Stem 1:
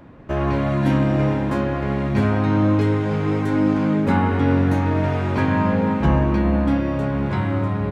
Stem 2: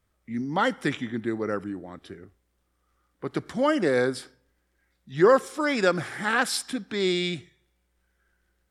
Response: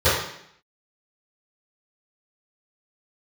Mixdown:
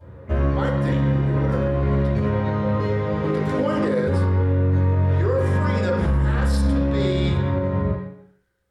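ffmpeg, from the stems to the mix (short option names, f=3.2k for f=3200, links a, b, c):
-filter_complex "[0:a]volume=-8.5dB,asplit=2[a][b];[b]volume=-13.5dB[c];[1:a]volume=-3dB,asplit=3[d][e][f];[e]volume=-20.5dB[g];[f]apad=whole_len=348889[h];[a][h]sidechaingate=range=-33dB:threshold=-49dB:ratio=16:detection=peak[i];[2:a]atrim=start_sample=2205[j];[c][g]amix=inputs=2:normalize=0[k];[k][j]afir=irnorm=-1:irlink=0[l];[i][d][l]amix=inputs=3:normalize=0,alimiter=limit=-12.5dB:level=0:latency=1:release=114"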